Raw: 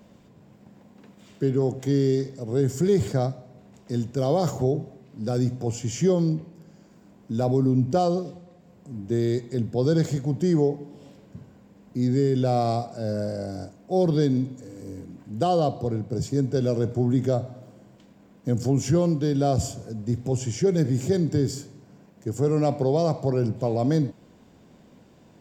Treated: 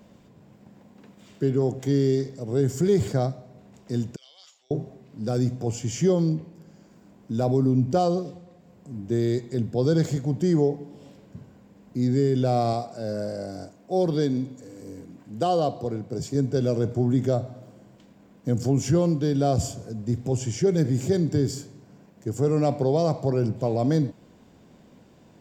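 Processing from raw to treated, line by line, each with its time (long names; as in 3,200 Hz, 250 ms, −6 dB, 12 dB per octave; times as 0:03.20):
0:04.16–0:04.71: four-pole ladder band-pass 3,500 Hz, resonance 50%
0:12.73–0:16.35: low-shelf EQ 150 Hz −8.5 dB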